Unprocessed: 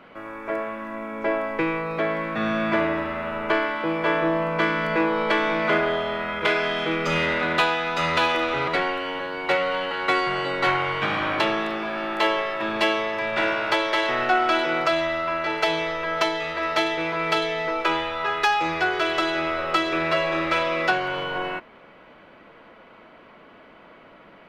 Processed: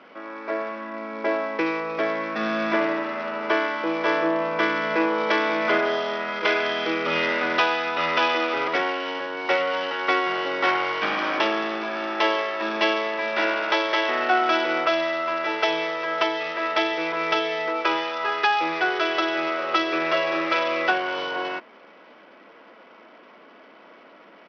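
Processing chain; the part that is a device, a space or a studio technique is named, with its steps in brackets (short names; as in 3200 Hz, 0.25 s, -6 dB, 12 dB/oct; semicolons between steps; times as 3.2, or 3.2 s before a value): Bluetooth headset (HPF 220 Hz 24 dB/oct; downsampling 8000 Hz; SBC 64 kbps 44100 Hz)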